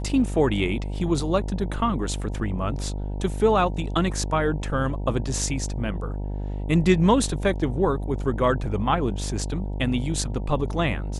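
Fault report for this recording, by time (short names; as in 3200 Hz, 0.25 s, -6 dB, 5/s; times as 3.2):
buzz 50 Hz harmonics 19 -29 dBFS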